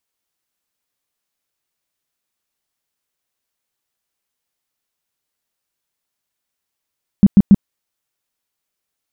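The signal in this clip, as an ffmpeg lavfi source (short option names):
-f lavfi -i "aevalsrc='0.75*sin(2*PI*199*mod(t,0.14))*lt(mod(t,0.14),7/199)':d=0.42:s=44100"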